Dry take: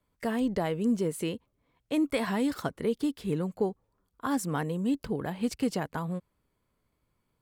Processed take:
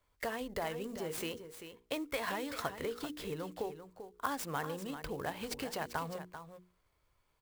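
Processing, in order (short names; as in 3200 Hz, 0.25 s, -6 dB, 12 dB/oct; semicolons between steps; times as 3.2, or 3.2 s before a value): notches 60/120/180/240/300/360/420/480 Hz; compressor, threshold -32 dBFS, peak gain reduction 9.5 dB; bell 210 Hz -14 dB 1.6 oct; echo 0.391 s -10.5 dB; clock jitter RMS 0.021 ms; gain +3.5 dB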